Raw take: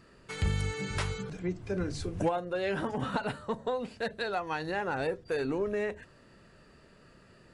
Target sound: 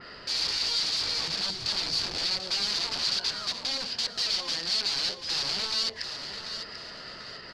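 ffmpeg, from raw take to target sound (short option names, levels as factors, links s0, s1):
-filter_complex "[0:a]equalizer=f=1300:w=0.39:g=12.5,acompressor=threshold=0.02:ratio=6,aeval=exprs='(mod(56.2*val(0)+1,2)-1)/56.2':c=same,aeval=exprs='0.0188*(cos(1*acos(clip(val(0)/0.0188,-1,1)))-cos(1*PI/2))+0.000376*(cos(4*acos(clip(val(0)/0.0188,-1,1)))-cos(4*PI/2))+0.00168*(cos(5*acos(clip(val(0)/0.0188,-1,1)))-cos(5*PI/2))':c=same,asetrate=46722,aresample=44100,atempo=0.943874,lowpass=f=4600:t=q:w=7.1,asplit=2[s0][s1];[s1]aecho=0:1:740|1480|2220|2960:0.355|0.142|0.0568|0.0227[s2];[s0][s2]amix=inputs=2:normalize=0,adynamicequalizer=threshold=0.00447:dfrequency=3600:dqfactor=0.7:tfrequency=3600:tqfactor=0.7:attack=5:release=100:ratio=0.375:range=3.5:mode=boostabove:tftype=highshelf,volume=1.12"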